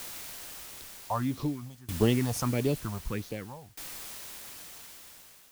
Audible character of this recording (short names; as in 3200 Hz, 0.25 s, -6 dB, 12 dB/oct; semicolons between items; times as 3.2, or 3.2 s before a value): phasing stages 4, 1.6 Hz, lowest notch 320–1600 Hz; a quantiser's noise floor 8-bit, dither triangular; tremolo saw down 0.53 Hz, depth 95%